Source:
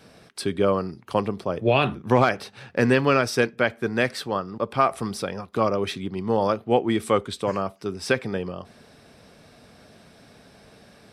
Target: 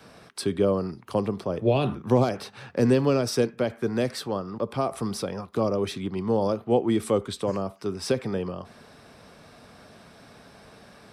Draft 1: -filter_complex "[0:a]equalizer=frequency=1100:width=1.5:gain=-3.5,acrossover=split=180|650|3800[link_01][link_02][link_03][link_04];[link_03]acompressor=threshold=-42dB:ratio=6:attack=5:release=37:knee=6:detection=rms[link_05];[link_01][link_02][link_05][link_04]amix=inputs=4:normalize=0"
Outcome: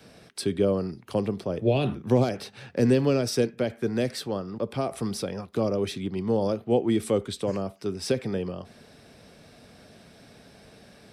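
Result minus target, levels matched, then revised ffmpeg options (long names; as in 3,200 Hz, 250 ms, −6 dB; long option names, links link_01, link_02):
1,000 Hz band −3.5 dB
-filter_complex "[0:a]equalizer=frequency=1100:width=1.5:gain=5.5,acrossover=split=180|650|3800[link_01][link_02][link_03][link_04];[link_03]acompressor=threshold=-42dB:ratio=6:attack=5:release=37:knee=6:detection=rms[link_05];[link_01][link_02][link_05][link_04]amix=inputs=4:normalize=0"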